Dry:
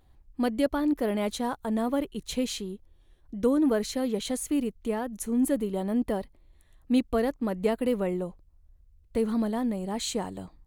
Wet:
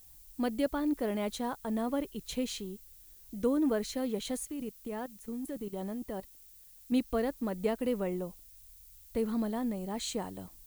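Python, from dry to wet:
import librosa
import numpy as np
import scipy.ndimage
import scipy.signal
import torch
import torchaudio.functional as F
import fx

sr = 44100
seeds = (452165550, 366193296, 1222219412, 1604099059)

y = fx.level_steps(x, sr, step_db=16, at=(4.45, 6.92))
y = fx.dmg_noise_colour(y, sr, seeds[0], colour='violet', level_db=-51.0)
y = y * 10.0 ** (-5.0 / 20.0)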